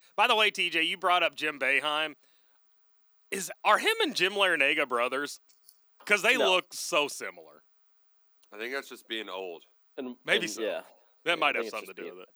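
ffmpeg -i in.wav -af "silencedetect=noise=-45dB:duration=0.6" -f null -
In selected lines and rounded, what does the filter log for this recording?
silence_start: 2.13
silence_end: 3.32 | silence_duration: 1.19
silence_start: 7.57
silence_end: 8.53 | silence_duration: 0.95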